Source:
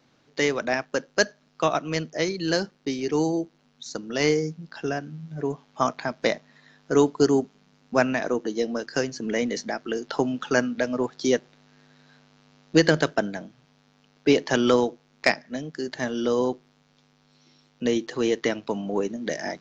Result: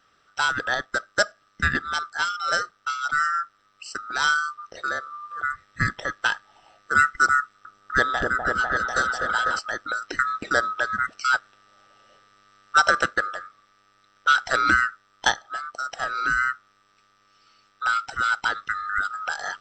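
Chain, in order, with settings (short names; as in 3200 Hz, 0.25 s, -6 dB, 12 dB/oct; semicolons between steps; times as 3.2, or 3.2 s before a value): band-swap scrambler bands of 1000 Hz; 7.4–9.59 repeats that get brighter 0.249 s, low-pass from 750 Hz, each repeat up 1 oct, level 0 dB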